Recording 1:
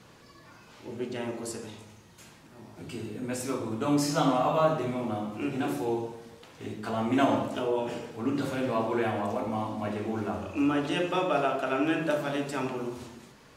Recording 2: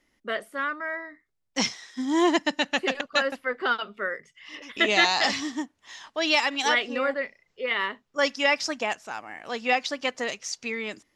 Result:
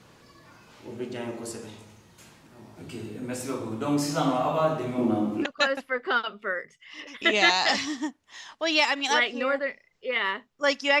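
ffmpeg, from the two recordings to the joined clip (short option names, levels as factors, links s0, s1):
-filter_complex "[0:a]asettb=1/sr,asplit=3[s0][s1][s2];[s0]atrim=end=4.984[s3];[s1]atrim=start=4.98:end=5.46,asetpts=PTS-STARTPTS,afade=t=in:d=0.004:c=qsin,afade=t=out:st=0.476:d=0.004:c=qsin,equalizer=f=300:w=1.1:g=12[s4];[s2]atrim=start=5.456[s5];[s3][s4]acrossfade=d=0.004:c1=hsin:c2=qsin[s6];[s6][s5]acrossfade=d=0.004:c1=qsin:c2=hsin,apad=whole_dur=11,atrim=end=11,atrim=end=5.46,asetpts=PTS-STARTPTS[s7];[1:a]atrim=start=2.95:end=8.55,asetpts=PTS-STARTPTS[s8];[s7][s8]acrossfade=d=0.06:c1=tri:c2=tri"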